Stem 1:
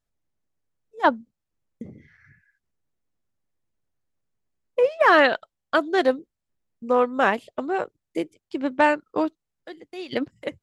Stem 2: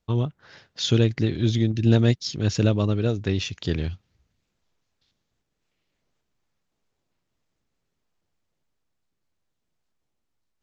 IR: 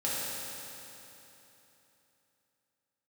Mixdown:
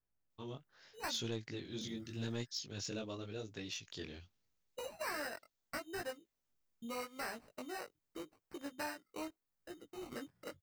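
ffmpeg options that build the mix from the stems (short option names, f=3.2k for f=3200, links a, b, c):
-filter_complex "[0:a]acrossover=split=890|2000[a][b][c];[a]acompressor=threshold=-37dB:ratio=4[d];[b]acompressor=threshold=-28dB:ratio=4[e];[c]acompressor=threshold=-41dB:ratio=4[f];[d][e][f]amix=inputs=3:normalize=0,equalizer=f=1k:t=o:w=2:g=-6.5,acrusher=samples=13:mix=1:aa=0.000001,volume=-5dB[g];[1:a]aemphasis=mode=production:type=bsi,adelay=300,volume=-13dB[h];[g][h]amix=inputs=2:normalize=0,flanger=delay=17:depth=5.7:speed=0.82,asoftclip=type=tanh:threshold=-31dB"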